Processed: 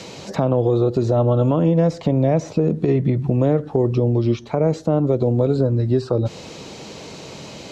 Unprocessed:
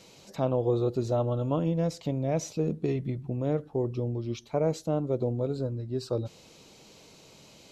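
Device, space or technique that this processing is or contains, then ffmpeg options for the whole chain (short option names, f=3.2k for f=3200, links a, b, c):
mastering chain: -filter_complex "[0:a]highpass=53,lowpass=7.7k,equalizer=f=1.8k:t=o:w=0.22:g=3.5,acrossover=split=320|1700[a][b][c];[a]acompressor=threshold=-31dB:ratio=4[d];[b]acompressor=threshold=-30dB:ratio=4[e];[c]acompressor=threshold=-59dB:ratio=4[f];[d][e][f]amix=inputs=3:normalize=0,acompressor=threshold=-34dB:ratio=2.5,alimiter=level_in=26dB:limit=-1dB:release=50:level=0:latency=1,volume=-7dB"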